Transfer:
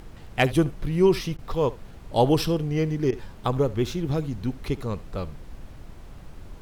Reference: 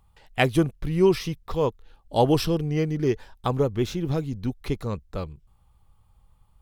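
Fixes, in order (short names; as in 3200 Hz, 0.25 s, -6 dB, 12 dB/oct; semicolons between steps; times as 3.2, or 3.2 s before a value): clip repair -8 dBFS; interpolate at 1.37/3.11, 14 ms; noise print and reduce 16 dB; inverse comb 70 ms -19.5 dB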